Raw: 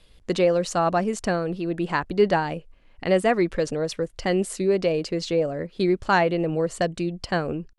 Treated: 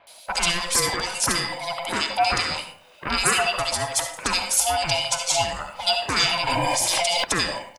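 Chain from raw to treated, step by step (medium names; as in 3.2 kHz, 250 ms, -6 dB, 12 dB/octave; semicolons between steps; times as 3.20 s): split-band scrambler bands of 500 Hz; 6.58–6.93 s: spectral replace 370–3200 Hz both; RIAA curve recording; spectral gate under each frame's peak -10 dB weak; in parallel at -8 dB: saturation -20.5 dBFS, distortion -19 dB; on the sum: bands offset in time lows, highs 70 ms, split 2.1 kHz; on a send at -6.5 dB: reverberation RT60 0.55 s, pre-delay 25 ms; 6.47–7.24 s: on the sum: level flattener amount 100%; trim +7 dB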